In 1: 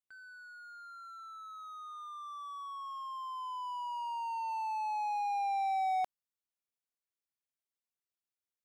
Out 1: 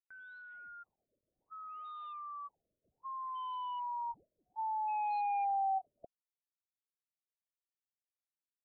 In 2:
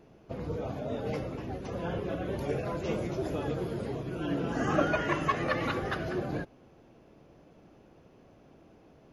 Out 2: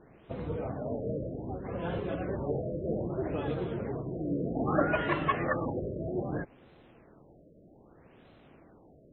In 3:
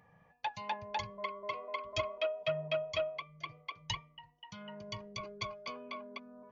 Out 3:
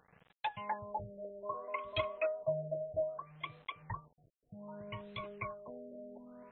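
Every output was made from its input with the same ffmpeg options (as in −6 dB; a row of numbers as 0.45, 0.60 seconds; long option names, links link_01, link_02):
-af "acrusher=bits=9:mix=0:aa=0.000001,afftfilt=real='re*lt(b*sr/1024,640*pow(4200/640,0.5+0.5*sin(2*PI*0.63*pts/sr)))':imag='im*lt(b*sr/1024,640*pow(4200/640,0.5+0.5*sin(2*PI*0.63*pts/sr)))':win_size=1024:overlap=0.75"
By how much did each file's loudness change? −0.5, −0.5, −1.5 LU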